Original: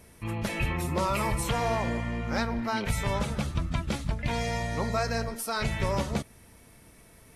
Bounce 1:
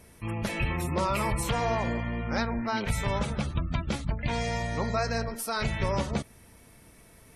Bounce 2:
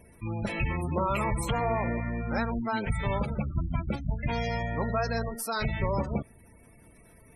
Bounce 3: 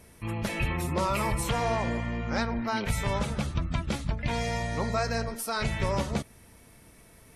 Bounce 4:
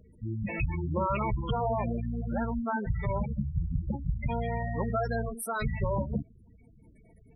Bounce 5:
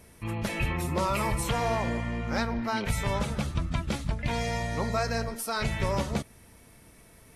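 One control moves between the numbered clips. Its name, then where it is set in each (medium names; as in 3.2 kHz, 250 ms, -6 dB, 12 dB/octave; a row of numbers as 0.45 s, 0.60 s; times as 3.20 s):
spectral gate, under each frame's peak: -35 dB, -20 dB, -45 dB, -10 dB, -60 dB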